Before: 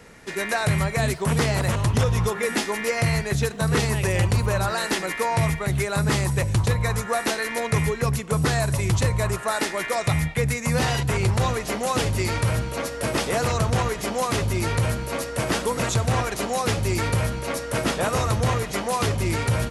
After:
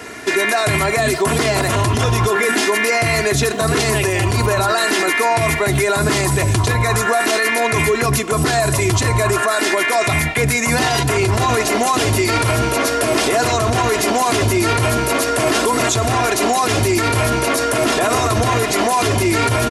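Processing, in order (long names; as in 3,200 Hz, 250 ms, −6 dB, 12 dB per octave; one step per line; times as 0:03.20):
high-pass filter 130 Hz 12 dB per octave
comb filter 2.9 ms, depth 72%
in parallel at +2.5 dB: compressor whose output falls as the input rises −27 dBFS
on the sum: brickwall limiter −13 dBFS, peak gain reduction 8 dB
level +5.5 dB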